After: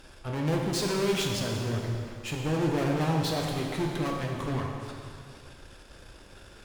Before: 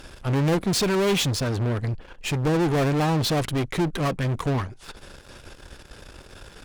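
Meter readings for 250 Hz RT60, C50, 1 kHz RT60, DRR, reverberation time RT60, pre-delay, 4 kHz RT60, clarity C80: 2.3 s, 1.5 dB, 2.3 s, -0.5 dB, 2.2 s, 5 ms, 2.2 s, 3.0 dB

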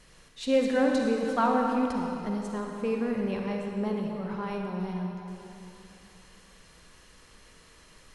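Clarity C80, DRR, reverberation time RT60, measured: 2.0 dB, 0.5 dB, 2.9 s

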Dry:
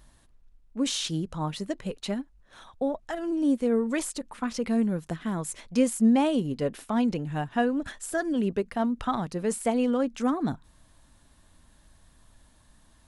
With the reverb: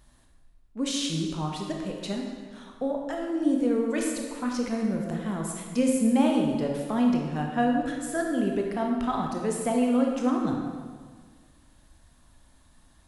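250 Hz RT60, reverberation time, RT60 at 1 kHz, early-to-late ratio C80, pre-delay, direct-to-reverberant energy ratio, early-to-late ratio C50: 1.8 s, 1.7 s, 1.6 s, 4.0 dB, 19 ms, 0.5 dB, 2.5 dB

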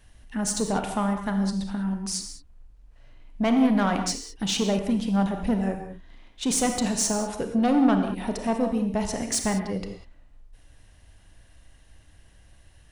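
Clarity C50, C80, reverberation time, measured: 6.0 dB, 8.0 dB, no single decay rate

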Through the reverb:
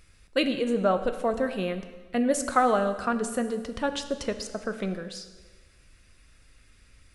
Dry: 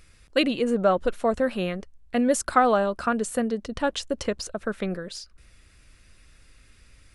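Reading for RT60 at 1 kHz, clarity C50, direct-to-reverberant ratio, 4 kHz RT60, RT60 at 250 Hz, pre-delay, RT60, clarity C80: 1.4 s, 10.5 dB, 8.5 dB, 1.3 s, 1.4 s, 5 ms, 1.4 s, 12.0 dB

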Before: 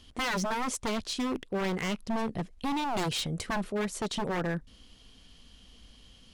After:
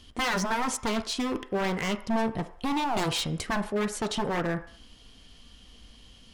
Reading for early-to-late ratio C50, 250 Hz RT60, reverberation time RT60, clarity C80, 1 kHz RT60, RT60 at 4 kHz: 13.5 dB, 0.45 s, 0.60 s, 16.5 dB, 0.65 s, 0.65 s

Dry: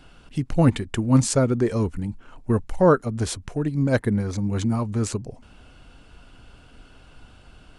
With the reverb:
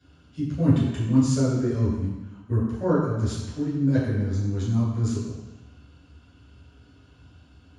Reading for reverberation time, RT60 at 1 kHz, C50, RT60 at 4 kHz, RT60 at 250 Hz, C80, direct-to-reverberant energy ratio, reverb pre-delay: 1.1 s, 1.2 s, 0.5 dB, 1.2 s, 1.0 s, 2.5 dB, -11.5 dB, 3 ms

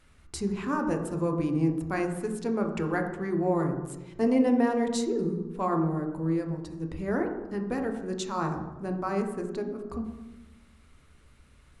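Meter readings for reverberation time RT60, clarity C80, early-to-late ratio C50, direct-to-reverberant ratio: 1.1 s, 9.0 dB, 6.5 dB, 3.5 dB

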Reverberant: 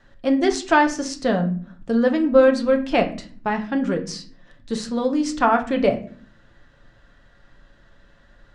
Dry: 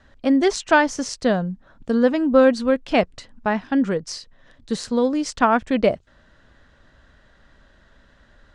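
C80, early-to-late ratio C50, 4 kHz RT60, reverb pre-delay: 17.5 dB, 13.0 dB, 0.30 s, 6 ms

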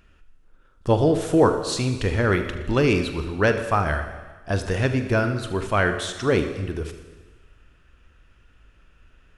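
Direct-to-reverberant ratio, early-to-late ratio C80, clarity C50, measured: 7.0 dB, 10.5 dB, 8.5 dB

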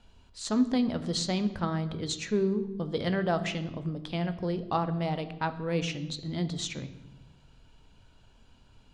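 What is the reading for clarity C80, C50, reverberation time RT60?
15.0 dB, 13.0 dB, 1.1 s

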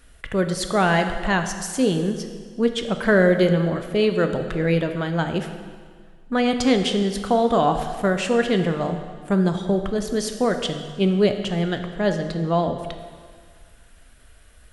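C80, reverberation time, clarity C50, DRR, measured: 9.5 dB, 1.8 s, 8.0 dB, 6.5 dB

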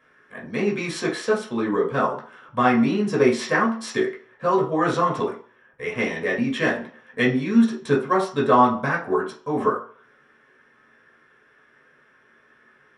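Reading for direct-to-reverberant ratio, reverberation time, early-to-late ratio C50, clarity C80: -4.0 dB, 0.45 s, 9.0 dB, 14.0 dB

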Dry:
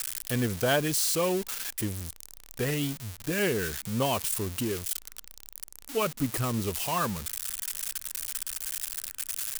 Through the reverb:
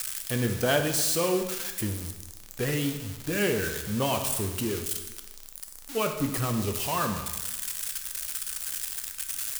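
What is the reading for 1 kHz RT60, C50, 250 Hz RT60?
1.1 s, 7.5 dB, 1.1 s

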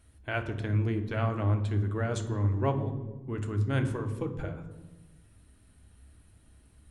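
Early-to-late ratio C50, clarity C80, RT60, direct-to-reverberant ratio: 10.5 dB, 12.5 dB, 1.2 s, 6.0 dB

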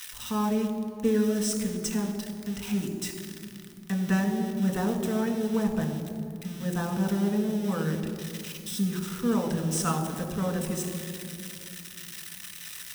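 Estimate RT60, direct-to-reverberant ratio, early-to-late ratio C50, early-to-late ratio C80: 2.5 s, 2.5 dB, 7.0 dB, 8.0 dB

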